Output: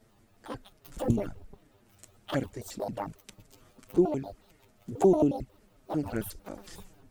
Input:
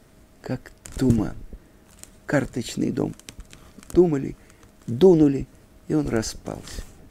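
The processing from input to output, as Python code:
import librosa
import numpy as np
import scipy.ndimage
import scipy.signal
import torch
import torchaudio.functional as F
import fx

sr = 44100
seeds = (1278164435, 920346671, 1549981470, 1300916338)

y = fx.pitch_trill(x, sr, semitones=12.0, every_ms=90)
y = fx.env_flanger(y, sr, rest_ms=9.5, full_db=-15.5)
y = y * 10.0 ** (-6.5 / 20.0)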